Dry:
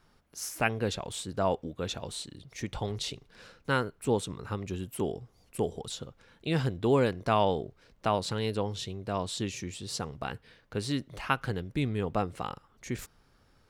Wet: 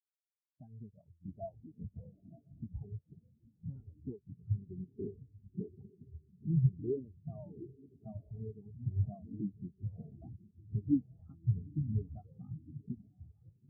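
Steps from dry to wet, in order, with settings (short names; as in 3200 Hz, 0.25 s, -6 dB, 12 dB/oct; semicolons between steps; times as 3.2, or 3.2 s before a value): switching dead time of 0.23 ms; LPF 2300 Hz; compressor 6:1, threshold -38 dBFS, peak gain reduction 16.5 dB; diffused feedback echo 0.91 s, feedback 43%, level -4.5 dB; in parallel at -3 dB: wavefolder -36 dBFS; on the sum: notch comb 500 Hz; echoes that change speed 0.126 s, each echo -5 st, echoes 3, each echo -6 dB; spectral expander 4:1; gain +8.5 dB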